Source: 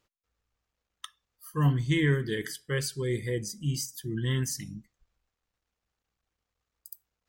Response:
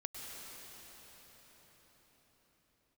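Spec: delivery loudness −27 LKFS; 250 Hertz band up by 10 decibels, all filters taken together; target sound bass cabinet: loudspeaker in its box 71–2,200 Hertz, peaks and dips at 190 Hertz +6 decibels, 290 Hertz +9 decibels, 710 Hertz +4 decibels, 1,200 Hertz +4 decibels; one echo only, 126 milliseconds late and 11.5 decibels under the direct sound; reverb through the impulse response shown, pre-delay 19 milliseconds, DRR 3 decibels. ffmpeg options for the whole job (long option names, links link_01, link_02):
-filter_complex "[0:a]equalizer=frequency=250:width_type=o:gain=6.5,aecho=1:1:126:0.266,asplit=2[link_01][link_02];[1:a]atrim=start_sample=2205,adelay=19[link_03];[link_02][link_03]afir=irnorm=-1:irlink=0,volume=-2.5dB[link_04];[link_01][link_04]amix=inputs=2:normalize=0,highpass=frequency=71:width=0.5412,highpass=frequency=71:width=1.3066,equalizer=frequency=190:width_type=q:width=4:gain=6,equalizer=frequency=290:width_type=q:width=4:gain=9,equalizer=frequency=710:width_type=q:width=4:gain=4,equalizer=frequency=1200:width_type=q:width=4:gain=4,lowpass=frequency=2200:width=0.5412,lowpass=frequency=2200:width=1.3066,volume=-4dB"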